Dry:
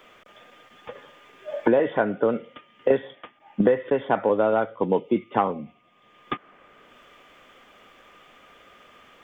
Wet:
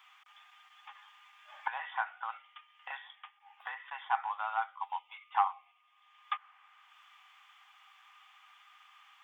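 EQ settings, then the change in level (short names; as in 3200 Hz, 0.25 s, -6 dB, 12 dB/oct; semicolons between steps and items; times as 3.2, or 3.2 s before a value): dynamic EQ 1100 Hz, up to +3 dB, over -37 dBFS, Q 0.81; rippled Chebyshev high-pass 770 Hz, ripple 3 dB; -5.5 dB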